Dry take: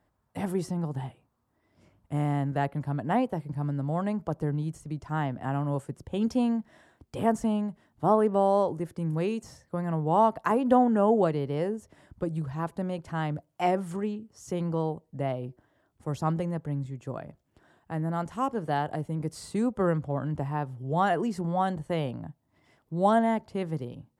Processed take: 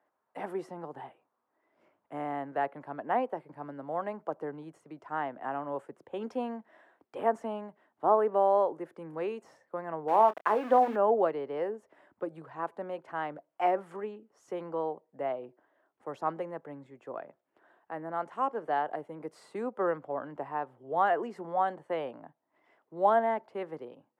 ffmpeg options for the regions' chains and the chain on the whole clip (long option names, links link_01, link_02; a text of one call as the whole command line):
ffmpeg -i in.wav -filter_complex "[0:a]asettb=1/sr,asplit=3[link_01][link_02][link_03];[link_01]atrim=end=10.084[link_04];[link_02]atrim=start=10.08:end=10.96,asetpts=PTS-STARTPTS,afade=type=in:duration=0.004:curve=qsin,afade=type=out:start_time=0.876:duration=0.004:curve=qsin,bandreject=frequency=82.73:width_type=h:width=4,bandreject=frequency=165.46:width_type=h:width=4,bandreject=frequency=248.19:width_type=h:width=4,aeval=exprs='val(0)*gte(abs(val(0)),0.0211)':channel_layout=same,asplit=2[link_05][link_06];[link_06]adelay=28,volume=-12.5dB[link_07];[link_05][link_07]amix=inputs=2:normalize=0,atrim=end_sample=38808[link_08];[link_03]atrim=start=10.956[link_09];[link_04][link_08]acrossfade=duration=0.004:curve1=hsin:curve2=qsin[link_10];[link_10][link_09]acrossfade=duration=0.004:curve1=qsin:curve2=hsin,highpass=140,acrossover=split=340 2500:gain=0.0708 1 0.126[link_11][link_12][link_13];[link_11][link_12][link_13]amix=inputs=3:normalize=0" out.wav